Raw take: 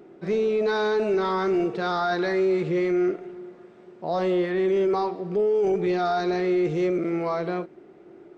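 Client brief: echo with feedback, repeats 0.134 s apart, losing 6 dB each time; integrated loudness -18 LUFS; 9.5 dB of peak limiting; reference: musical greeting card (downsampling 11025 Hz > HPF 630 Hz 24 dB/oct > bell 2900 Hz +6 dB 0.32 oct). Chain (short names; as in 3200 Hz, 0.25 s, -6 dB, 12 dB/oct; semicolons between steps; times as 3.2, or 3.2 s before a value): limiter -26 dBFS; feedback echo 0.134 s, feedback 50%, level -6 dB; downsampling 11025 Hz; HPF 630 Hz 24 dB/oct; bell 2900 Hz +6 dB 0.32 oct; gain +21 dB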